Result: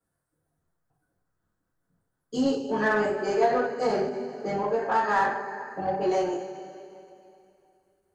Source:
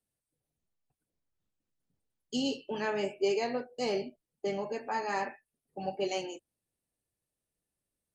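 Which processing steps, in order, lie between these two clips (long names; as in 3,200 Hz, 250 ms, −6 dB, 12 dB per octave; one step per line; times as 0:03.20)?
high shelf with overshoot 2,000 Hz −8 dB, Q 3
coupled-rooms reverb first 0.31 s, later 2.7 s, from −18 dB, DRR −9 dB
in parallel at −4 dB: soft clipping −26.5 dBFS, distortion −8 dB
on the sum: every ending faded ahead of time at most 120 dB per second
level −2.5 dB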